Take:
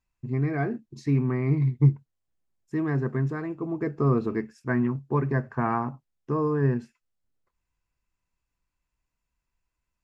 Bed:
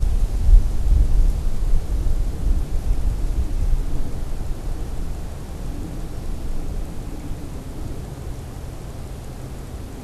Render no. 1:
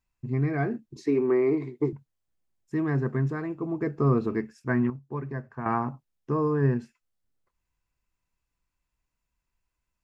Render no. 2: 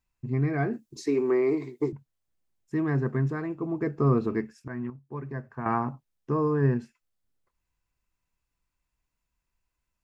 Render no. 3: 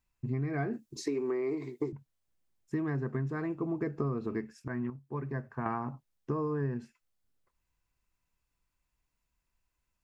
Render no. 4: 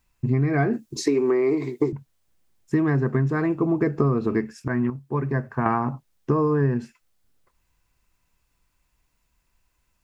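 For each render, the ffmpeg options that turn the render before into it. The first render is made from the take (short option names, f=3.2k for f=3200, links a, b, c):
-filter_complex "[0:a]asettb=1/sr,asplit=3[a][b][c];[a]atrim=end=0.964[d];[b]atrim=start=0.96:end=1.93,asetpts=PTS-STARTPTS,afade=t=in:d=0.004:c=qsin,afade=t=out:st=0.966:d=0.004:c=qsin,highpass=f=380:t=q:w=3.4[e];[c]atrim=start=1.926[f];[d][e]acrossfade=d=0.004:c1=hsin:c2=qsin[g];[g][f]acrossfade=d=0.004:c1=qsin:c2=hsin,asplit=3[h][i][j];[h]atrim=end=4.902[k];[i]atrim=start=4.898:end=5.662,asetpts=PTS-STARTPTS,volume=-8.5dB[l];[j]atrim=start=5.658[m];[k][l]acrossfade=d=0.004:c1=hsin:c2=hsin[n];[n][m]acrossfade=d=0.004:c1=hsin:c2=hsin"
-filter_complex "[0:a]asettb=1/sr,asplit=3[a][b][c];[a]atrim=end=0.734[d];[b]atrim=start=0.73:end=1.92,asetpts=PTS-STARTPTS,afade=t=in:d=0.004:c=qsin,afade=t=out:st=1.186:d=0.004:c=qsin,bass=f=250:g=-5,treble=f=4k:g=10[e];[c]atrim=start=1.916[f];[d][e]acrossfade=d=0.004:c1=hsin:c2=qsin[g];[g][f]acrossfade=d=0.004:c1=qsin:c2=hsin,asplit=2[h][i];[h]atrim=end=4.68,asetpts=PTS-STARTPTS,afade=t=out:st=4.676:d=0.004:c=hsin:silence=0.211349[j];[i]atrim=start=4.68,asetpts=PTS-STARTPTS,afade=t=in:d=0.81:silence=0.211349[k];[j][k]concat=n=2:v=0:a=1"
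-af "acompressor=threshold=-29dB:ratio=10"
-af "volume=11.5dB"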